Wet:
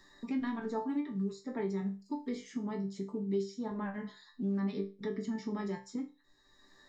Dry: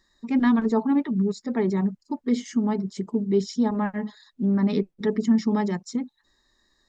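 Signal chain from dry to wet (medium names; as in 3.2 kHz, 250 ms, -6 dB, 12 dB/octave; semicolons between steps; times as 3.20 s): chord resonator G2 sus4, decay 0.27 s; three bands compressed up and down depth 70%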